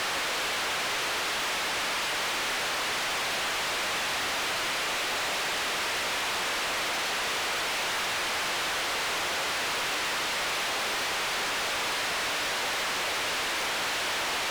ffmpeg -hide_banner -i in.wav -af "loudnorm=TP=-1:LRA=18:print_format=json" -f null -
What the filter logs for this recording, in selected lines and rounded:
"input_i" : "-27.7",
"input_tp" : "-25.6",
"input_lra" : "0.0",
"input_thresh" : "-37.7",